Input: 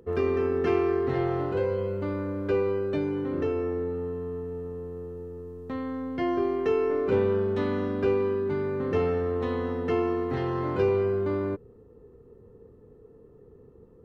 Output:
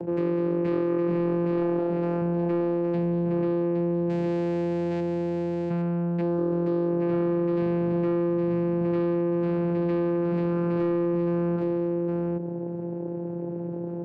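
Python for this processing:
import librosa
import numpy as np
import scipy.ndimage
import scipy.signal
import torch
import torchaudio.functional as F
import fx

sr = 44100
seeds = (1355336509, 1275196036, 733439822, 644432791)

y = fx.sample_hold(x, sr, seeds[0], rate_hz=1200.0, jitter_pct=0, at=(4.09, 5.0))
y = fx.vocoder(y, sr, bands=8, carrier='saw', carrier_hz=172.0)
y = fx.bass_treble(y, sr, bass_db=-15, treble_db=3, at=(1.79, 2.22))
y = y + 10.0 ** (-6.0 / 20.0) * np.pad(y, (int(814 * sr / 1000.0), 0))[:len(y)]
y = 10.0 ** (-20.0 / 20.0) * np.tanh(y / 10.0 ** (-20.0 / 20.0))
y = fx.peak_eq(y, sr, hz=2300.0, db=-9.0, octaves=1.2, at=(6.21, 7.02))
y = fx.env_flatten(y, sr, amount_pct=70)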